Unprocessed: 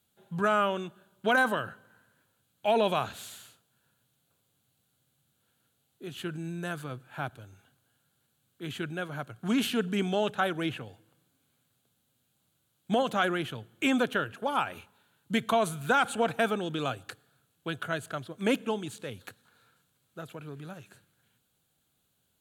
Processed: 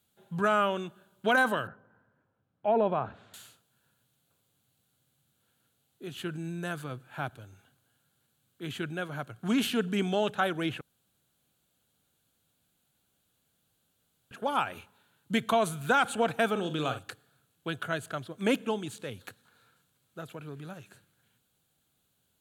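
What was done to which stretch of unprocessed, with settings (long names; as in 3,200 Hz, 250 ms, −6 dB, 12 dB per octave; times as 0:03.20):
0:01.67–0:03.34: low-pass filter 1,200 Hz
0:10.81–0:14.31: fill with room tone
0:16.51–0:16.99: flutter between parallel walls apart 7.8 metres, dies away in 0.29 s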